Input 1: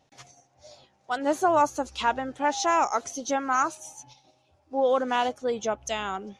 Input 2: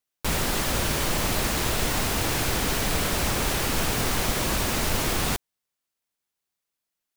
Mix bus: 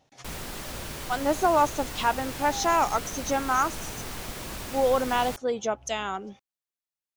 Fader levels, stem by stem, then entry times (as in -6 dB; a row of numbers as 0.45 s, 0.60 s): 0.0 dB, -11.5 dB; 0.00 s, 0.00 s